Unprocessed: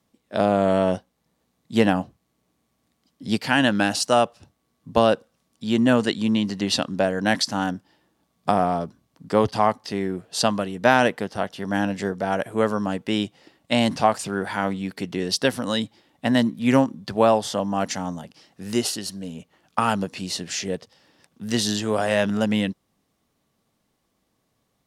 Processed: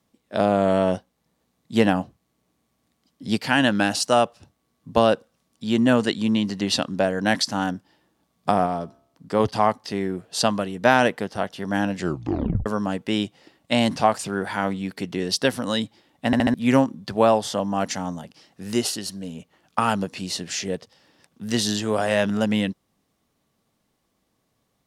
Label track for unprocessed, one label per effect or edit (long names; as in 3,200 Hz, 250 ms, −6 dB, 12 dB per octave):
8.660000	9.400000	tuned comb filter 68 Hz, decay 0.74 s, mix 30%
11.980000	11.980000	tape stop 0.68 s
16.260000	16.260000	stutter in place 0.07 s, 4 plays